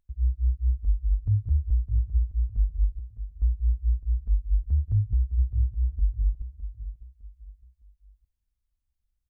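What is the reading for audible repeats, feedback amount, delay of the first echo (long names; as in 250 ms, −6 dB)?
3, 34%, 609 ms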